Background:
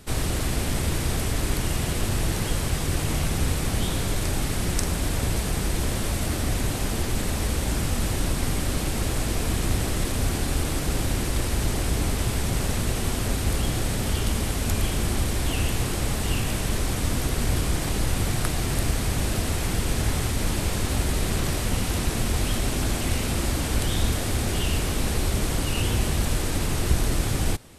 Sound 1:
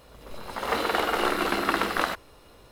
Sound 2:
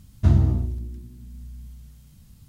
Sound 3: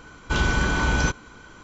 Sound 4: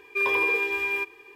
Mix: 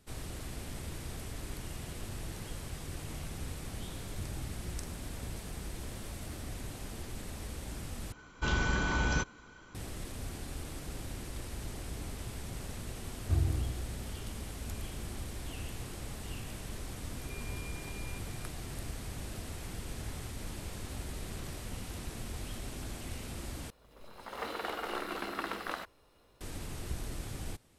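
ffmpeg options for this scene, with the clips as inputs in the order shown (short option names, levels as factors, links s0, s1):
-filter_complex "[2:a]asplit=2[s0][s1];[0:a]volume=0.15[s2];[s0]acompressor=threshold=0.0355:ratio=6:attack=3.2:release=140:knee=1:detection=peak[s3];[s1]aecho=1:1:2.6:0.85[s4];[4:a]acompressor=threshold=0.00891:ratio=6:attack=3.2:release=140:knee=1:detection=peak[s5];[s2]asplit=3[s6][s7][s8];[s6]atrim=end=8.124[s9];[3:a]atrim=end=1.63,asetpts=PTS-STARTPTS,volume=0.376[s10];[s7]atrim=start=9.746:end=23.704[s11];[1:a]atrim=end=2.71,asetpts=PTS-STARTPTS,volume=0.237[s12];[s8]atrim=start=26.406[s13];[s3]atrim=end=2.48,asetpts=PTS-STARTPTS,volume=0.282,afade=t=in:d=0.004:c=hsin,afade=t=out:st=2.476:d=0.004:c=hsin,adelay=3950[s14];[s4]atrim=end=2.48,asetpts=PTS-STARTPTS,volume=0.178,afade=t=in:d=0.004:c=hsin,afade=t=out:st=2.476:d=0.004:c=hsin,adelay=13060[s15];[s5]atrim=end=1.35,asetpts=PTS-STARTPTS,volume=0.355,afade=t=in:d=0.004:c=hsin,afade=t=out:st=1.346:d=0.004:c=hsin,adelay=17150[s16];[s9][s10]acrossfade=d=0.004:c1=hsin:c2=hsin[s17];[s17][s11]acrossfade=d=0.004:c1=hsin:c2=hsin[s18];[s18][s12]acrossfade=d=0.004:c1=hsin:c2=hsin[s19];[s19][s13]acrossfade=d=0.004:c1=hsin:c2=hsin[s20];[s20][s14][s15][s16]amix=inputs=4:normalize=0"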